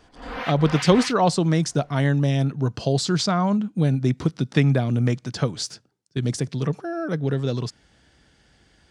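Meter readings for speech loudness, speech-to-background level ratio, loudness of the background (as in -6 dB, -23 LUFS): -22.5 LUFS, 10.0 dB, -32.5 LUFS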